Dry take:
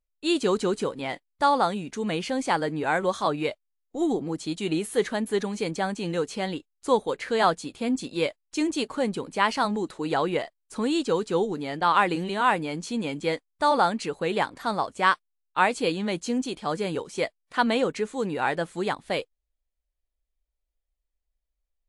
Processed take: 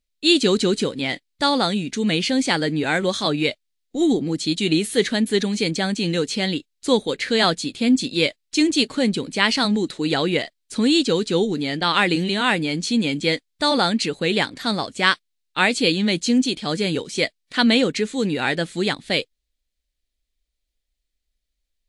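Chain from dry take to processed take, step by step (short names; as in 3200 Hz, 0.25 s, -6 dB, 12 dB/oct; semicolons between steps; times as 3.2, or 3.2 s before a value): graphic EQ 125/250/1000/2000/4000/8000 Hz +4/+6/-8/+5/+10/+4 dB; gain +3 dB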